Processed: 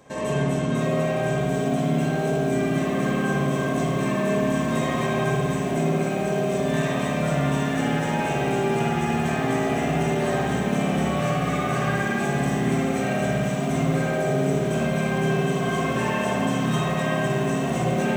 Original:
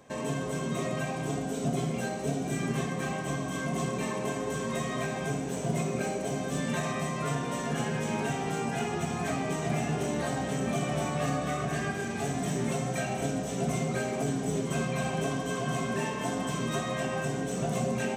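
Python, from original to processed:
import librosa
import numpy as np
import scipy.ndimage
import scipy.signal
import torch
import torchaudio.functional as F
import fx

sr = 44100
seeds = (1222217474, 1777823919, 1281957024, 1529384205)

y = fx.rev_spring(x, sr, rt60_s=2.5, pass_ms=(56,), chirp_ms=45, drr_db=-6.0)
y = fx.rider(y, sr, range_db=3, speed_s=0.5)
y = fx.echo_crushed(y, sr, ms=675, feedback_pct=80, bits=7, wet_db=-12)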